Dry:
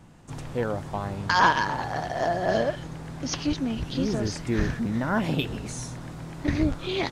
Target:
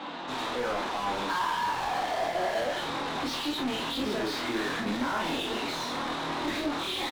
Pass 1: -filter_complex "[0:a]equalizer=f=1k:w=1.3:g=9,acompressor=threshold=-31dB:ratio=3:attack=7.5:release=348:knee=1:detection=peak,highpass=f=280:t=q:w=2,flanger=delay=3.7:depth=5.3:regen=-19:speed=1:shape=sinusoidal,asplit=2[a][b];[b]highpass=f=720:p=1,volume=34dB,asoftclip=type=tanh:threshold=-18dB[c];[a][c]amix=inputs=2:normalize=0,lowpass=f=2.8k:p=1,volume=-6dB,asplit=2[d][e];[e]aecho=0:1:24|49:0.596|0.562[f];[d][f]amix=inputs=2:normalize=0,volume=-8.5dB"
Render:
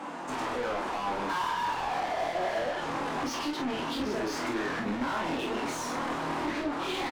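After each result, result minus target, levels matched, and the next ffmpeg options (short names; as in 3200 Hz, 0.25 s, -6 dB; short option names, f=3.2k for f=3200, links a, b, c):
compressor: peak gain reduction +6 dB; 4000 Hz band -4.5 dB
-filter_complex "[0:a]equalizer=f=1k:w=1.3:g=9,acompressor=threshold=-21dB:ratio=3:attack=7.5:release=348:knee=1:detection=peak,highpass=f=280:t=q:w=2,flanger=delay=3.7:depth=5.3:regen=-19:speed=1:shape=sinusoidal,asplit=2[a][b];[b]highpass=f=720:p=1,volume=34dB,asoftclip=type=tanh:threshold=-18dB[c];[a][c]amix=inputs=2:normalize=0,lowpass=f=2.8k:p=1,volume=-6dB,asplit=2[d][e];[e]aecho=0:1:24|49:0.596|0.562[f];[d][f]amix=inputs=2:normalize=0,volume=-8.5dB"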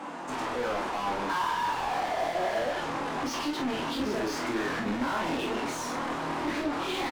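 4000 Hz band -4.5 dB
-filter_complex "[0:a]lowpass=f=3.8k:t=q:w=6.2,equalizer=f=1k:w=1.3:g=9,acompressor=threshold=-21dB:ratio=3:attack=7.5:release=348:knee=1:detection=peak,highpass=f=280:t=q:w=2,flanger=delay=3.7:depth=5.3:regen=-19:speed=1:shape=sinusoidal,asplit=2[a][b];[b]highpass=f=720:p=1,volume=34dB,asoftclip=type=tanh:threshold=-18dB[c];[a][c]amix=inputs=2:normalize=0,lowpass=f=2.8k:p=1,volume=-6dB,asplit=2[d][e];[e]aecho=0:1:24|49:0.596|0.562[f];[d][f]amix=inputs=2:normalize=0,volume=-8.5dB"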